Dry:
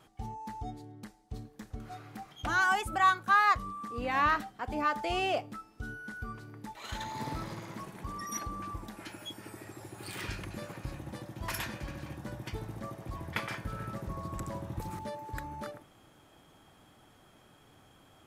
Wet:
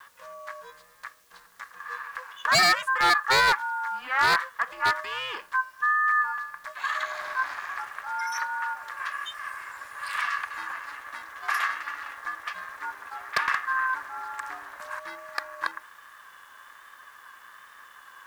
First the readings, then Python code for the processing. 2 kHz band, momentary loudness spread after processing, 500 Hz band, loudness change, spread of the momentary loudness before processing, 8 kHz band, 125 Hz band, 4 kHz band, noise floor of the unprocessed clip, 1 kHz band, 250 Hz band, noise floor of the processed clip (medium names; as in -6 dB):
+9.5 dB, 18 LU, +2.0 dB, +7.0 dB, 19 LU, +7.0 dB, -10.5 dB, +12.0 dB, -61 dBFS, +5.0 dB, -8.5 dB, -53 dBFS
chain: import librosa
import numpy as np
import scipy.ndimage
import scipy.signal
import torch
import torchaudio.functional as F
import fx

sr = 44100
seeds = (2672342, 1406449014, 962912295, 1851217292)

p1 = fx.high_shelf(x, sr, hz=9800.0, db=-10.5)
p2 = fx.over_compress(p1, sr, threshold_db=-39.0, ratio=-1.0)
p3 = p1 + F.gain(torch.from_numpy(p2), -3.0).numpy()
p4 = fx.highpass_res(p3, sr, hz=1400.0, q=12.0)
p5 = fx.quant_dither(p4, sr, seeds[0], bits=10, dither='triangular')
p6 = p5 * np.sin(2.0 * np.pi * 260.0 * np.arange(len(p5)) / sr)
p7 = 10.0 ** (-14.5 / 20.0) * (np.abs((p6 / 10.0 ** (-14.5 / 20.0) + 3.0) % 4.0 - 2.0) - 1.0)
p8 = fx.vibrato(p7, sr, rate_hz=1.2, depth_cents=26.0)
y = F.gain(torch.from_numpy(p8), 1.0).numpy()